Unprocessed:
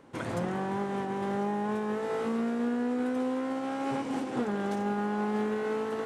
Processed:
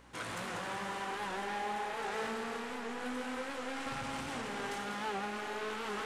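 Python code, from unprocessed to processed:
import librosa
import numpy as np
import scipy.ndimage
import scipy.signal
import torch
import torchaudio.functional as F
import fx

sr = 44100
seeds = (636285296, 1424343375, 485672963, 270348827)

y = fx.chorus_voices(x, sr, voices=4, hz=0.63, base_ms=18, depth_ms=1.3, mix_pct=35)
y = y + 10.0 ** (-7.5 / 20.0) * np.pad(y, (int(192 * sr / 1000.0), 0))[:len(y)]
y = fx.add_hum(y, sr, base_hz=60, snr_db=22)
y = fx.low_shelf_res(y, sr, hz=220.0, db=13.0, q=1.5, at=(3.86, 4.28))
y = 10.0 ** (-35.5 / 20.0) * np.tanh(y / 10.0 ** (-35.5 / 20.0))
y = fx.tilt_shelf(y, sr, db=-8.0, hz=830.0)
y = fx.rev_schroeder(y, sr, rt60_s=4.0, comb_ms=28, drr_db=1.5)
y = fx.record_warp(y, sr, rpm=78.0, depth_cents=100.0)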